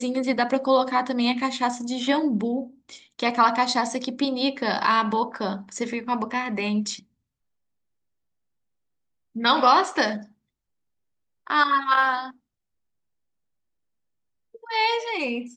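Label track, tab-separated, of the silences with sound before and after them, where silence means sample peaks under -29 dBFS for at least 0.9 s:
6.950000	9.360000	silence
10.180000	11.470000	silence
12.270000	14.700000	silence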